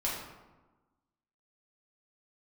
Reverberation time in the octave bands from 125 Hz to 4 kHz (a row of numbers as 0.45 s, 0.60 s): 1.3 s, 1.5 s, 1.2 s, 1.2 s, 0.90 s, 0.65 s